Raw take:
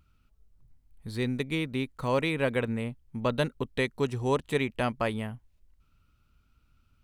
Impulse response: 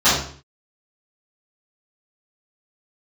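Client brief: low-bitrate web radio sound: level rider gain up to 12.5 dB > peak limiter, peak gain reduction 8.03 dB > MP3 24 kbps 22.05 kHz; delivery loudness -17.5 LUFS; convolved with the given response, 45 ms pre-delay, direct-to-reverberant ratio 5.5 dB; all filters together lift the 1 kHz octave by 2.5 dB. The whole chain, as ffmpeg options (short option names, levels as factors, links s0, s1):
-filter_complex "[0:a]equalizer=f=1000:t=o:g=3,asplit=2[s0][s1];[1:a]atrim=start_sample=2205,adelay=45[s2];[s1][s2]afir=irnorm=-1:irlink=0,volume=0.0376[s3];[s0][s3]amix=inputs=2:normalize=0,dynaudnorm=m=4.22,alimiter=limit=0.106:level=0:latency=1,volume=5.01" -ar 22050 -c:a libmp3lame -b:a 24k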